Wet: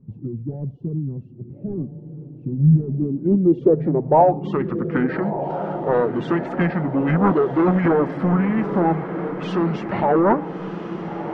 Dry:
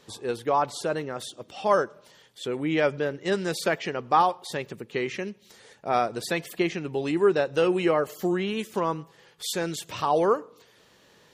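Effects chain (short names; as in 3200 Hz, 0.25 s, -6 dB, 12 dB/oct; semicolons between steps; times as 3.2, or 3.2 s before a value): dynamic EQ 1700 Hz, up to -8 dB, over -42 dBFS, Q 1.2; in parallel at -2.5 dB: limiter -18 dBFS, peak gain reduction 7.5 dB; on the sum: formant shift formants -5 st; soft clip -18 dBFS, distortion -13 dB; low-pass sweep 160 Hz -> 1300 Hz, 2.79–4.62; diffused feedback echo 1.327 s, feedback 61%, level -9.5 dB; gain +5 dB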